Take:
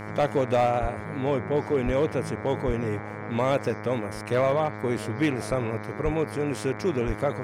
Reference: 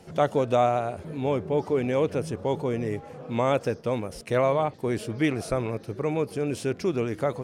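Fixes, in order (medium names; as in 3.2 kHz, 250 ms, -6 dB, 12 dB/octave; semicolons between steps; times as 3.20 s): clip repair -16 dBFS; de-hum 105.4 Hz, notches 22; de-plosive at 0.81/1.85/2.66/6.04/7.06 s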